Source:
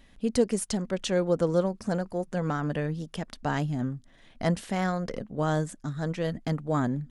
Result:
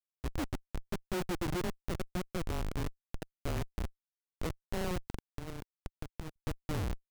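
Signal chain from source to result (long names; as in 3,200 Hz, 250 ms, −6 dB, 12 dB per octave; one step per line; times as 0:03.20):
single-sideband voice off tune −170 Hz 240–3,000 Hz
comparator with hysteresis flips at −27.5 dBFS
0:05.07–0:06.36: power curve on the samples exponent 3
level −1.5 dB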